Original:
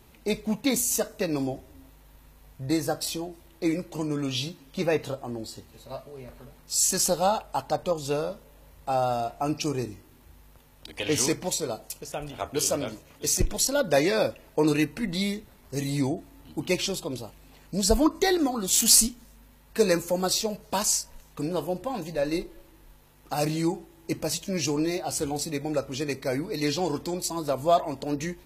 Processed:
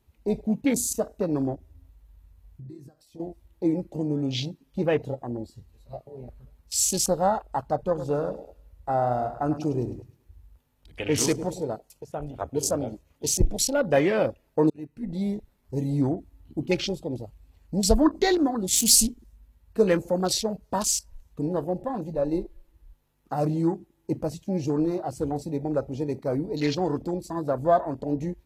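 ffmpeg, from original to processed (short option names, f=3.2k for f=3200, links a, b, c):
-filter_complex "[0:a]asettb=1/sr,asplit=3[a][b][c];[a]atrim=end=1.554[d];[b]atrim=start=1.55:end=3.2,asetpts=PTS-STARTPTS,afade=t=in:d=0.004:c=qsin,afade=t=out:st=1.646:d=0.004:c=qsin,acompressor=threshold=-42dB:ratio=5:attack=3.2:release=140:knee=1:detection=peak[e];[c]atrim=start=3.196[f];[d][e]acrossfade=d=0.004:c1=hsin:c2=qsin[g];[g][f]acrossfade=d=0.004:c1=qsin:c2=hsin,asettb=1/sr,asplit=3[h][i][j];[h]atrim=end=7.804[k];[i]atrim=start=7.8:end=11.63,asetpts=PTS-STARTPTS,afade=t=in:d=0.004:c=qsin,afade=t=out:st=3.826:d=0.004:c=qsin,aecho=1:1:104|208|312|416|520:0.266|0.133|0.0665|0.0333|0.0166,atrim=end_sample=168903[l];[j]atrim=start=11.626[m];[k][l]acrossfade=d=0.004:c1=hsin:c2=qsin[n];[n][m]acrossfade=d=0.004:c1=qsin:c2=hsin,asplit=2[o][p];[o]atrim=end=14.7,asetpts=PTS-STARTPTS,afade=t=out:st=14.696:d=0.004:c=hsin[q];[p]atrim=start=14.7,asetpts=PTS-STARTPTS,afade=t=in:d=0.65[r];[q][r]concat=n=2:v=0:a=1,afwtdn=0.0224,lowshelf=f=320:g=4"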